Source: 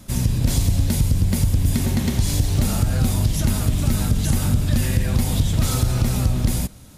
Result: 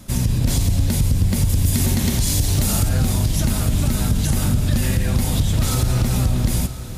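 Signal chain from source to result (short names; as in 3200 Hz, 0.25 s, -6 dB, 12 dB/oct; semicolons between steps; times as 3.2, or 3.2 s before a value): 1.49–2.89 high shelf 3800 Hz +7.5 dB; limiter -12 dBFS, peak gain reduction 3.5 dB; on a send: diffused feedback echo 0.923 s, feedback 44%, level -13 dB; on the sum: gain +2 dB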